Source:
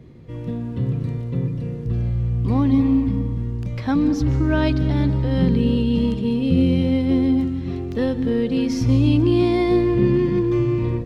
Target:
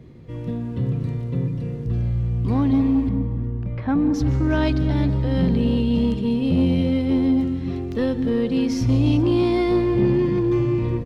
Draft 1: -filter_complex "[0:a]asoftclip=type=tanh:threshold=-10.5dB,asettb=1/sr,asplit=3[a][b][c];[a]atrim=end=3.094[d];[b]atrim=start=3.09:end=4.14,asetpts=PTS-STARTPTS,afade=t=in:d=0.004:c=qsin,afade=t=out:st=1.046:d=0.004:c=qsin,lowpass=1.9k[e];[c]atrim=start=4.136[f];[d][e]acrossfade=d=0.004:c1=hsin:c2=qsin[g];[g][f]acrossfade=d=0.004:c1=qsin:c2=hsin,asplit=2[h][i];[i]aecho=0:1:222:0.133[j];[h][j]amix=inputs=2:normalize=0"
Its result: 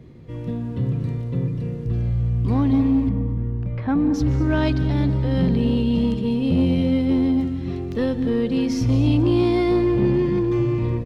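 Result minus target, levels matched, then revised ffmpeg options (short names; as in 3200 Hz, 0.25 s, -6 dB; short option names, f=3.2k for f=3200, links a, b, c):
echo 0.14 s early
-filter_complex "[0:a]asoftclip=type=tanh:threshold=-10.5dB,asettb=1/sr,asplit=3[a][b][c];[a]atrim=end=3.094[d];[b]atrim=start=3.09:end=4.14,asetpts=PTS-STARTPTS,afade=t=in:d=0.004:c=qsin,afade=t=out:st=1.046:d=0.004:c=qsin,lowpass=1.9k[e];[c]atrim=start=4.136[f];[d][e]acrossfade=d=0.004:c1=hsin:c2=qsin[g];[g][f]acrossfade=d=0.004:c1=qsin:c2=hsin,asplit=2[h][i];[i]aecho=0:1:362:0.133[j];[h][j]amix=inputs=2:normalize=0"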